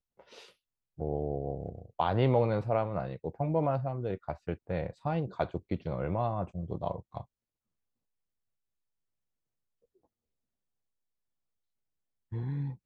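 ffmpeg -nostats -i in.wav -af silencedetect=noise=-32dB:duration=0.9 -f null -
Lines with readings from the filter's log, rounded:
silence_start: 0.00
silence_end: 1.01 | silence_duration: 1.01
silence_start: 7.21
silence_end: 12.33 | silence_duration: 5.12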